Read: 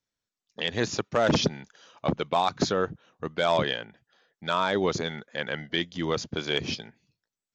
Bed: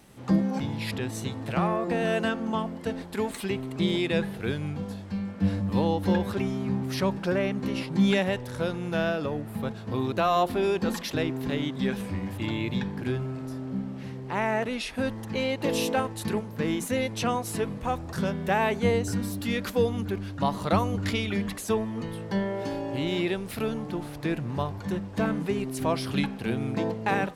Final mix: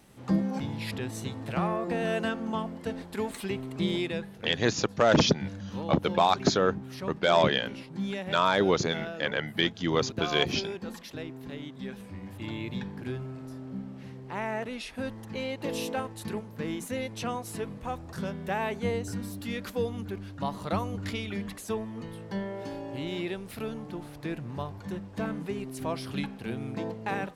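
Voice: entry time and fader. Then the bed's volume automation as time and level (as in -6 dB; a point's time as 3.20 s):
3.85 s, +1.5 dB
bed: 4.02 s -3 dB
4.26 s -11 dB
12.07 s -11 dB
12.53 s -6 dB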